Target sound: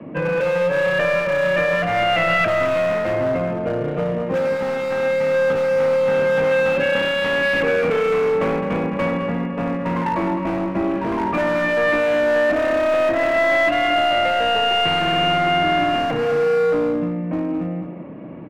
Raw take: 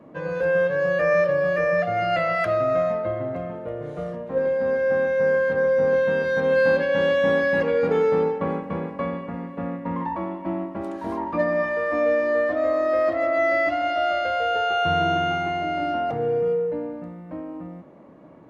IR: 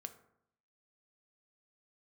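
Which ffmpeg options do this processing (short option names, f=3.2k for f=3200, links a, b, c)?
-filter_complex "[0:a]equalizer=f=170:w=0.36:g=11,acrossover=split=120|300[a][b][c];[a]acompressor=threshold=-44dB:ratio=4[d];[b]acompressor=threshold=-30dB:ratio=4[e];[c]acompressor=threshold=-17dB:ratio=4[f];[d][e][f]amix=inputs=3:normalize=0,lowpass=f=2.6k:t=q:w=3.7,acrossover=split=1700[g][h];[g]volume=22dB,asoftclip=hard,volume=-22dB[i];[i][h]amix=inputs=2:normalize=0,asplit=2[j][k];[k]adelay=209.9,volume=-8dB,highshelf=f=4k:g=-4.72[l];[j][l]amix=inputs=2:normalize=0,volume=3.5dB"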